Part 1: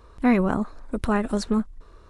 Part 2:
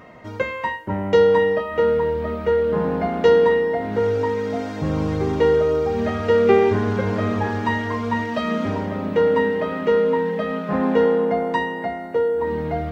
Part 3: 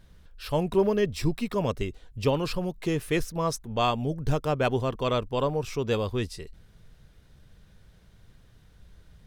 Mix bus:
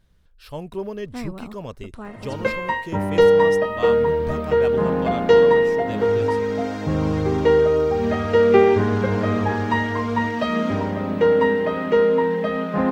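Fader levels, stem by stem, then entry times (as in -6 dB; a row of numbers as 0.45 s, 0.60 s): -13.5 dB, +1.0 dB, -6.5 dB; 0.90 s, 2.05 s, 0.00 s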